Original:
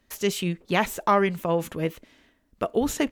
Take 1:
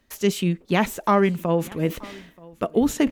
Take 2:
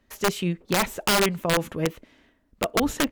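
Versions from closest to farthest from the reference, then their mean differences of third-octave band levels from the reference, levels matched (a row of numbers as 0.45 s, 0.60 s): 1, 2; 3.5 dB, 5.5 dB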